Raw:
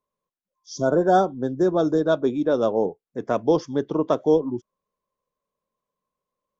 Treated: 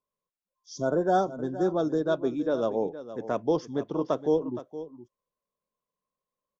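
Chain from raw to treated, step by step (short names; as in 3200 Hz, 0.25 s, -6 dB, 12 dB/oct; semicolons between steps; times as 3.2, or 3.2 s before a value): echo 0.467 s -13.5 dB; gain -6 dB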